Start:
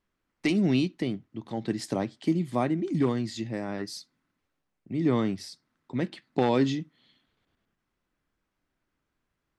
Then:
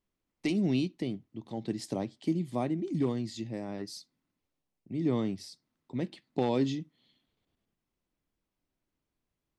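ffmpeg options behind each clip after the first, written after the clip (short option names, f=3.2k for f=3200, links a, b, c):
-af "equalizer=f=1.5k:t=o:w=0.99:g=-8.5,volume=-4dB"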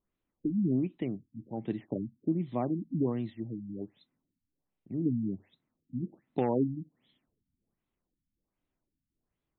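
-af "afftfilt=real='re*lt(b*sr/1024,270*pow(4200/270,0.5+0.5*sin(2*PI*1.3*pts/sr)))':imag='im*lt(b*sr/1024,270*pow(4200/270,0.5+0.5*sin(2*PI*1.3*pts/sr)))':win_size=1024:overlap=0.75"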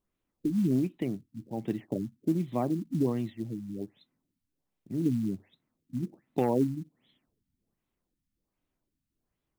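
-af "acrusher=bits=7:mode=log:mix=0:aa=0.000001,volume=2dB"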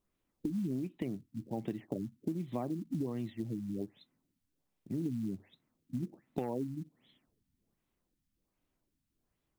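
-af "acompressor=threshold=-34dB:ratio=6,volume=1dB"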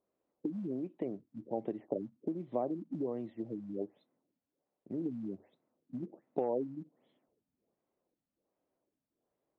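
-af "bandpass=f=550:t=q:w=1.8:csg=0,volume=7.5dB"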